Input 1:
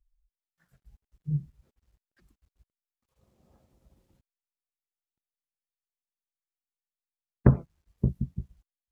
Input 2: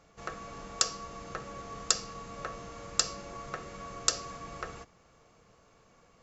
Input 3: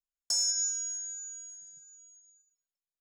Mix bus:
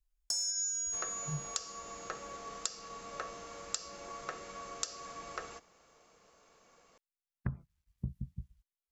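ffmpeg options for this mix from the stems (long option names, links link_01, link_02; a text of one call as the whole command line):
ffmpeg -i stem1.wav -i stem2.wav -i stem3.wav -filter_complex "[0:a]equalizer=frequency=460:width=0.7:gain=-15,volume=-5.5dB[link_01];[1:a]equalizer=frequency=110:width_type=o:width=0.45:gain=-6.5,alimiter=limit=-11.5dB:level=0:latency=1:release=318,bass=frequency=250:gain=-9,treble=frequency=4000:gain=4,adelay=750,volume=-1.5dB[link_02];[2:a]volume=0dB[link_03];[link_01][link_02][link_03]amix=inputs=3:normalize=0,acompressor=threshold=-32dB:ratio=6" out.wav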